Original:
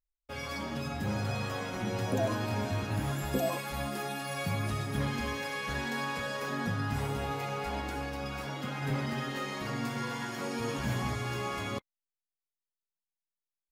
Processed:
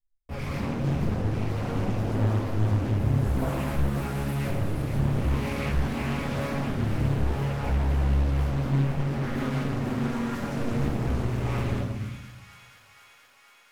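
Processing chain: FFT filter 170 Hz 0 dB, 430 Hz -12 dB, 2 kHz -16 dB, 3.4 kHz -22 dB, 5.8 kHz -20 dB, 13 kHz -13 dB; waveshaping leveller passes 5; peak limiter -38 dBFS, peak gain reduction 15 dB; on a send: feedback echo behind a high-pass 476 ms, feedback 74%, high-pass 1.9 kHz, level -7 dB; on the sum: simulated room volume 320 m³, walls mixed, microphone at 3.4 m; loudspeaker Doppler distortion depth 0.82 ms; trim +4 dB

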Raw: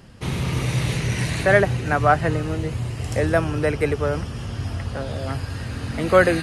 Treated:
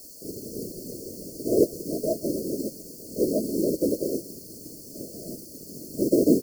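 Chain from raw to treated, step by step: steep high-pass 190 Hz 36 dB/octave; tilt EQ -3 dB/octave; static phaser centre 850 Hz, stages 8; word length cut 6-bit, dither triangular; whisper effect; brick-wall FIR band-stop 670–4200 Hz; on a send: delay 147 ms -17.5 dB; on the sum: upward expansion 1.5:1, over -35 dBFS; trim +1 dB

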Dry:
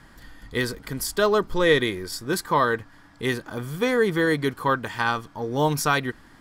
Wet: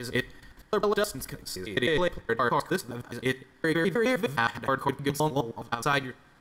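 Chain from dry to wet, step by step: slices played last to first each 104 ms, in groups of 7; level held to a coarse grid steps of 12 dB; two-slope reverb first 0.48 s, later 2.3 s, from -18 dB, DRR 17 dB

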